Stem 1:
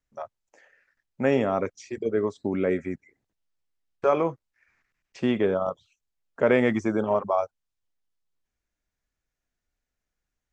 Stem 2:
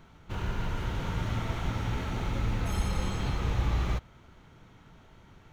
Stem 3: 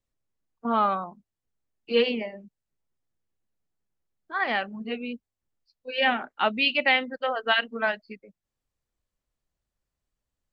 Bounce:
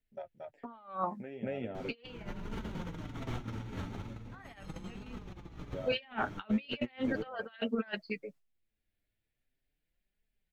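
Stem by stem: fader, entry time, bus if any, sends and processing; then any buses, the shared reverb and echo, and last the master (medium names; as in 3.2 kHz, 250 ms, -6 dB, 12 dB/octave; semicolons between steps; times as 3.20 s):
-5.5 dB, 0.00 s, no send, echo send -3.5 dB, compression 3:1, threshold -32 dBFS, peak gain reduction 12.5 dB; static phaser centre 2.7 kHz, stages 4; auto duck -11 dB, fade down 0.95 s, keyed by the third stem
+1.0 dB, 1.75 s, no send, no echo send, peaking EQ 260 Hz +8.5 dB 1.3 oct
+1.0 dB, 0.00 s, no send, no echo send, gate with hold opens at -45 dBFS; high-pass 110 Hz 6 dB/octave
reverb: none
echo: delay 227 ms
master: compressor with a negative ratio -34 dBFS, ratio -0.5; flange 0.39 Hz, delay 4.4 ms, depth 5.8 ms, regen +36%; wow and flutter 22 cents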